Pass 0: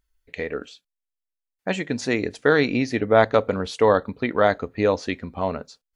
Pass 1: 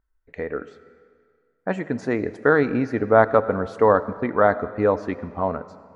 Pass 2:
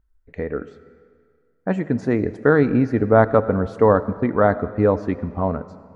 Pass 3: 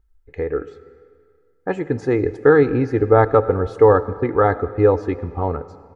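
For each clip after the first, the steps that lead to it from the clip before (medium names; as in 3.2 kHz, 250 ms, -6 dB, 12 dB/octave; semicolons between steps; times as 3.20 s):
resonant high shelf 2.1 kHz -13 dB, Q 1.5; algorithmic reverb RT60 2 s, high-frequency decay 0.9×, pre-delay 40 ms, DRR 15.5 dB
bass shelf 320 Hz +11.5 dB; trim -2 dB
comb 2.4 ms, depth 74%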